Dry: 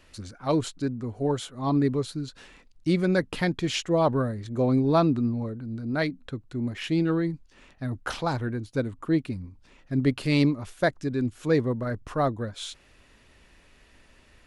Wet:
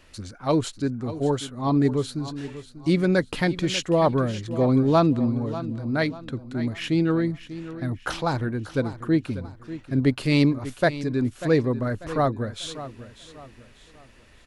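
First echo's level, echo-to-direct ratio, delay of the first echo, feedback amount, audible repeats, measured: -14.0 dB, -13.5 dB, 0.592 s, 37%, 3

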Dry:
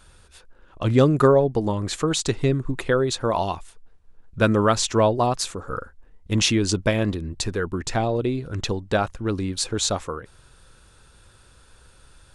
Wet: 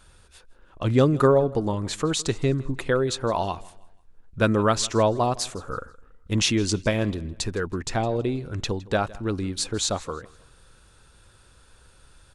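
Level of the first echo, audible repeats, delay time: -21.5 dB, 2, 0.162 s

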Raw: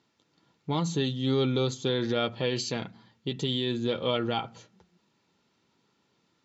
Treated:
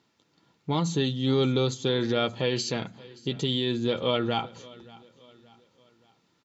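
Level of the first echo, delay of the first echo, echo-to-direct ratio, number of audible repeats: -22.0 dB, 0.575 s, -21.0 dB, 2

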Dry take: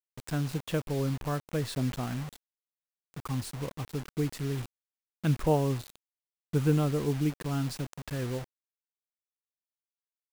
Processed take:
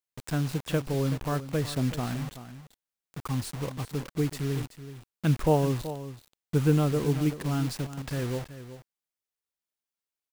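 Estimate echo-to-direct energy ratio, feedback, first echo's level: -13.0 dB, no steady repeat, -13.0 dB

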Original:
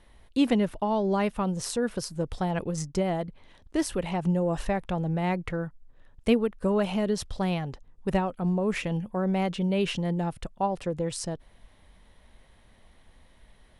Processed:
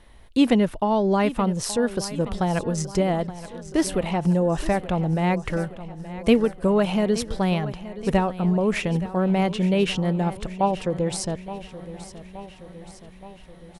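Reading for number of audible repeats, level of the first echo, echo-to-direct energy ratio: 5, -15.0 dB, -13.0 dB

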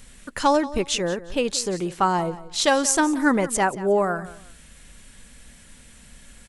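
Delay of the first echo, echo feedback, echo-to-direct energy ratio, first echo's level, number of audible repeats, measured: 0.179 s, 26%, -16.5 dB, -17.0 dB, 2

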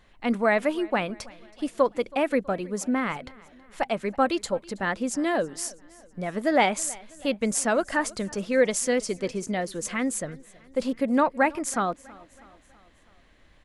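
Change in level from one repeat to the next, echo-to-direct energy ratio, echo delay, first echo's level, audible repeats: -5.5 dB, -21.5 dB, 0.324 s, -23.0 dB, 3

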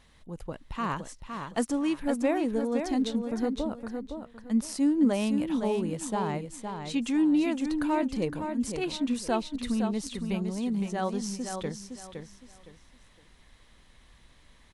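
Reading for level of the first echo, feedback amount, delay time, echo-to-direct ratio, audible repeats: -6.5 dB, 27%, 0.513 s, -6.0 dB, 3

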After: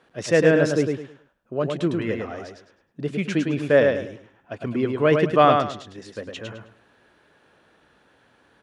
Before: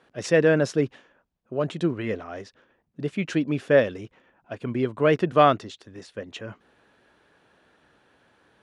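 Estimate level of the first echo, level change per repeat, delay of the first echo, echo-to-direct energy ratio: -4.5 dB, -11.5 dB, 0.105 s, -4.0 dB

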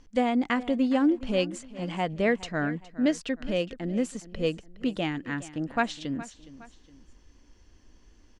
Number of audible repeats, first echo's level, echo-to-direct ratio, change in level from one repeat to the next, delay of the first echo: 2, -17.0 dB, -16.5 dB, -7.5 dB, 0.415 s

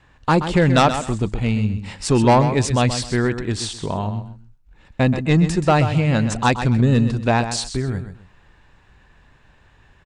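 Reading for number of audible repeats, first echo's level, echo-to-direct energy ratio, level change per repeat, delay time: 2, -10.0 dB, -9.5 dB, -11.5 dB, 0.129 s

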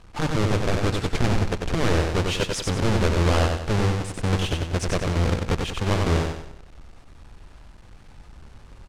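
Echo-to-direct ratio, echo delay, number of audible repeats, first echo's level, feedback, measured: -3.0 dB, 94 ms, 5, -4.0 dB, 41%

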